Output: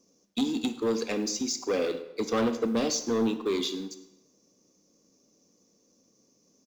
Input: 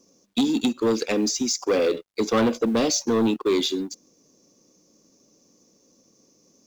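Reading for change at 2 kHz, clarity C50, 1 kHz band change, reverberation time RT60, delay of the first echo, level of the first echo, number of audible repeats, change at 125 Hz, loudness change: -6.0 dB, 11.5 dB, -6.0 dB, 0.95 s, 0.107 s, -20.5 dB, 1, -6.5 dB, -6.0 dB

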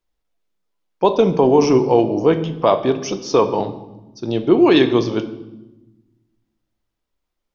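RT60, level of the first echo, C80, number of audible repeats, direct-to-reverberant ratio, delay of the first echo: 1.1 s, none, 15.0 dB, none, 8.5 dB, none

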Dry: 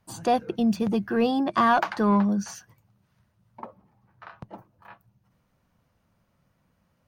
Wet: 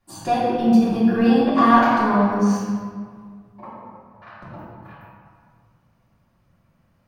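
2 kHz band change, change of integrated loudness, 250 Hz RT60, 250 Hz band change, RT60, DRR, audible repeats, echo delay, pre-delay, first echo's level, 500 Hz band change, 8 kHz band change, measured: +5.0 dB, +6.0 dB, 2.3 s, +7.5 dB, 1.8 s, -11.5 dB, none, none, 3 ms, none, +5.0 dB, +1.5 dB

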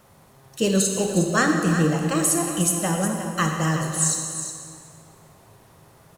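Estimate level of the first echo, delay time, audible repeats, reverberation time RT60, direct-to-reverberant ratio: -10.0 dB, 0.361 s, 1, 2.3 s, 2.0 dB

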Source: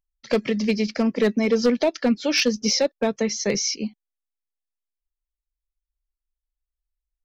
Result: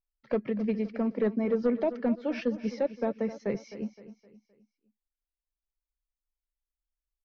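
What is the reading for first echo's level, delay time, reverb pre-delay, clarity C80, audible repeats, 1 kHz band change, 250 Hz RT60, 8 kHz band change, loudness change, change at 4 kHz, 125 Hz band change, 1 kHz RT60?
-14.0 dB, 0.259 s, none, none, 3, -7.5 dB, none, n/a, -8.5 dB, -26.5 dB, -7.0 dB, none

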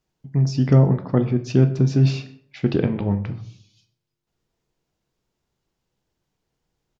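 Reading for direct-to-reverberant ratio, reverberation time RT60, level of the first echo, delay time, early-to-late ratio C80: 8.0 dB, 0.60 s, -23.5 dB, 0.126 s, 16.0 dB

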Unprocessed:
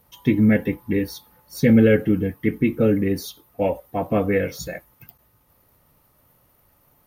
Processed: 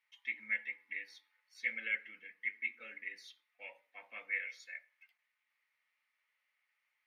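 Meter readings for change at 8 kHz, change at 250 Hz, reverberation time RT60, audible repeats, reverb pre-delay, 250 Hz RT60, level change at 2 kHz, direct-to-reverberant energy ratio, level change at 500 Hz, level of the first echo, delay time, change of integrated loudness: under -20 dB, under -40 dB, 0.40 s, none, 3 ms, 0.45 s, -6.0 dB, 9.5 dB, -39.5 dB, none, none, -19.0 dB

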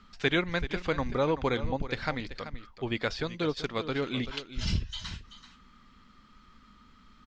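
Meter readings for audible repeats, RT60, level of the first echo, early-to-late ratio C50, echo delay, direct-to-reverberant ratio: 1, none, -13.0 dB, none, 0.384 s, none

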